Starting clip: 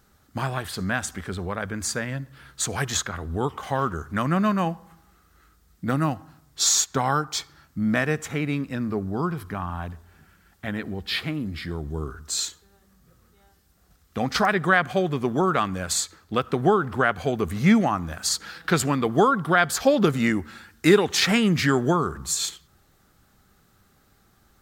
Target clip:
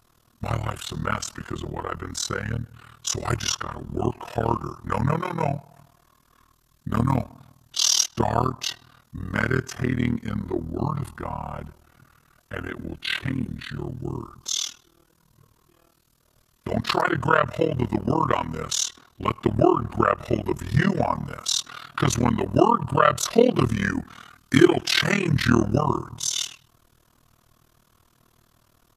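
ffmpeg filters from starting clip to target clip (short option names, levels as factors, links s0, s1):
-af "aecho=1:1:7.1:0.98,asetrate=37485,aresample=44100,tremolo=f=39:d=0.947,volume=1.12"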